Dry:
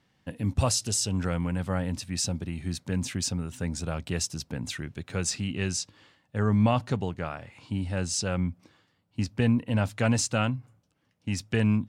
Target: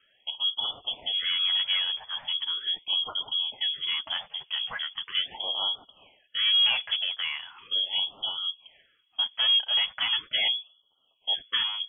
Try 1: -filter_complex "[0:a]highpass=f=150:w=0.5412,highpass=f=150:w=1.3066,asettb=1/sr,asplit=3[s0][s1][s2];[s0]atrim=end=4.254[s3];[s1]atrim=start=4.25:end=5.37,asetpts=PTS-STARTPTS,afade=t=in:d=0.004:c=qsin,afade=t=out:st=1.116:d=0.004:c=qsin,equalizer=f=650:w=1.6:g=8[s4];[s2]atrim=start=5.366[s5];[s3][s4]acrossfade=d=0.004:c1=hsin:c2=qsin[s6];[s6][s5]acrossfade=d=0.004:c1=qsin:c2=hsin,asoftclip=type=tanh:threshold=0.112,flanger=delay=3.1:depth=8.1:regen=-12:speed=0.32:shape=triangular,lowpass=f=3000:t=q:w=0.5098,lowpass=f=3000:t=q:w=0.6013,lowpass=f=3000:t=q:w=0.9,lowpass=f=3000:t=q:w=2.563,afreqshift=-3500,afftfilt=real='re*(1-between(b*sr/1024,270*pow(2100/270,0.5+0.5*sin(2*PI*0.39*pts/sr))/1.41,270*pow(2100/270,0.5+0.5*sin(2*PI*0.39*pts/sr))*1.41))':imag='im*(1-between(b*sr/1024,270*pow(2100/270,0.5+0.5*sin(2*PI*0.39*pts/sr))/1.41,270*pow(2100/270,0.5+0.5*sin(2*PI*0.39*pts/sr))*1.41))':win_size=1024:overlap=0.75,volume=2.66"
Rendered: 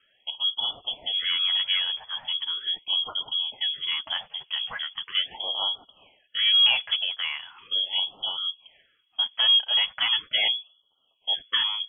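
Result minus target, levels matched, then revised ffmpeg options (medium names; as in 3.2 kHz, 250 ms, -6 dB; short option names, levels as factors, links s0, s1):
saturation: distortion -7 dB
-filter_complex "[0:a]highpass=f=150:w=0.5412,highpass=f=150:w=1.3066,asettb=1/sr,asplit=3[s0][s1][s2];[s0]atrim=end=4.254[s3];[s1]atrim=start=4.25:end=5.37,asetpts=PTS-STARTPTS,afade=t=in:d=0.004:c=qsin,afade=t=out:st=1.116:d=0.004:c=qsin,equalizer=f=650:w=1.6:g=8[s4];[s2]atrim=start=5.366[s5];[s3][s4]acrossfade=d=0.004:c1=hsin:c2=qsin[s6];[s6][s5]acrossfade=d=0.004:c1=qsin:c2=hsin,asoftclip=type=tanh:threshold=0.0531,flanger=delay=3.1:depth=8.1:regen=-12:speed=0.32:shape=triangular,lowpass=f=3000:t=q:w=0.5098,lowpass=f=3000:t=q:w=0.6013,lowpass=f=3000:t=q:w=0.9,lowpass=f=3000:t=q:w=2.563,afreqshift=-3500,afftfilt=real='re*(1-between(b*sr/1024,270*pow(2100/270,0.5+0.5*sin(2*PI*0.39*pts/sr))/1.41,270*pow(2100/270,0.5+0.5*sin(2*PI*0.39*pts/sr))*1.41))':imag='im*(1-between(b*sr/1024,270*pow(2100/270,0.5+0.5*sin(2*PI*0.39*pts/sr))/1.41,270*pow(2100/270,0.5+0.5*sin(2*PI*0.39*pts/sr))*1.41))':win_size=1024:overlap=0.75,volume=2.66"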